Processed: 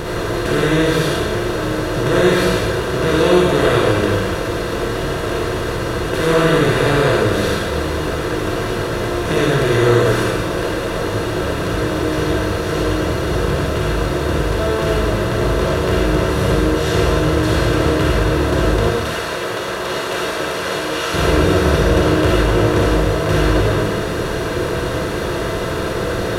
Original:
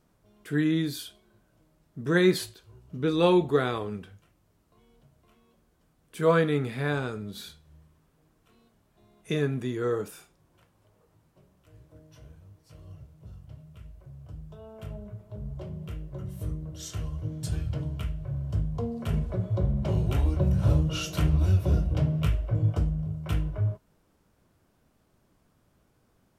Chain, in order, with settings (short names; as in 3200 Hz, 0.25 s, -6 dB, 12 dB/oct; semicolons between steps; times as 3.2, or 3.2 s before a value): per-bin compression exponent 0.2; 18.89–21.14 HPF 970 Hz 6 dB/oct; reverb RT60 0.95 s, pre-delay 15 ms, DRR -4 dB; gain -3 dB